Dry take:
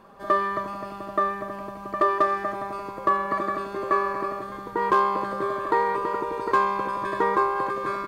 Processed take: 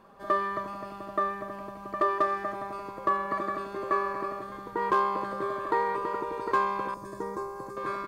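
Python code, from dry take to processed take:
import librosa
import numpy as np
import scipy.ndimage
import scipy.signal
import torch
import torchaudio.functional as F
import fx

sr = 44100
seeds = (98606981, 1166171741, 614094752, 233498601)

y = fx.curve_eq(x, sr, hz=(170.0, 3200.0, 6000.0), db=(0, -18, 3), at=(6.94, 7.77))
y = y * librosa.db_to_amplitude(-4.5)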